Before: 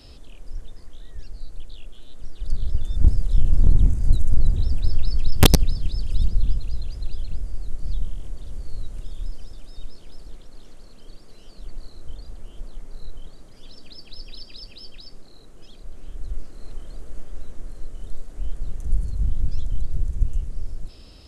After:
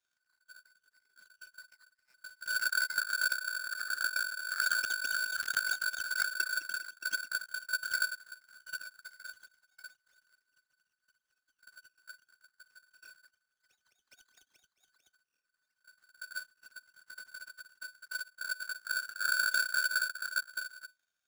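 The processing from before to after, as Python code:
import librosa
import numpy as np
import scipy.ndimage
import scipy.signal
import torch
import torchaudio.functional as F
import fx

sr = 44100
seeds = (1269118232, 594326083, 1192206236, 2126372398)

y = fx.cheby_harmonics(x, sr, harmonics=(4, 7), levels_db=(-31, -17), full_scale_db=-2.5)
y = fx.tone_stack(y, sr, knobs='5-5-5')
y = fx.over_compress(y, sr, threshold_db=-37.0, ratio=-1.0)
y = fx.peak_eq(y, sr, hz=260.0, db=5.0, octaves=0.39)
y = y * np.sign(np.sin(2.0 * np.pi * 1500.0 * np.arange(len(y)) / sr))
y = y * 10.0 ** (3.5 / 20.0)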